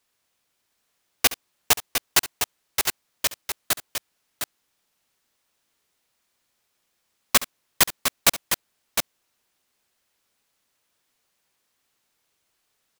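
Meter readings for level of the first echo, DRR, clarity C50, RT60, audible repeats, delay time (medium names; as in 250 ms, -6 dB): -16.5 dB, no reverb, no reverb, no reverb, 2, 69 ms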